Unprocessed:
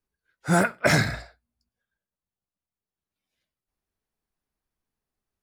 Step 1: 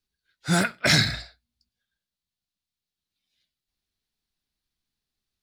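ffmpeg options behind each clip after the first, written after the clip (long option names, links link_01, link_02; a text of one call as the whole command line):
ffmpeg -i in.wav -af "equalizer=frequency=500:width_type=o:width=1:gain=-6,equalizer=frequency=1000:width_type=o:width=1:gain=-5,equalizer=frequency=4000:width_type=o:width=1:gain=12" out.wav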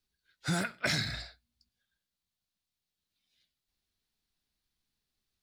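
ffmpeg -i in.wav -af "acompressor=threshold=-30dB:ratio=4" out.wav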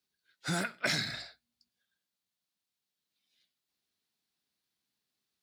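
ffmpeg -i in.wav -af "highpass=170" out.wav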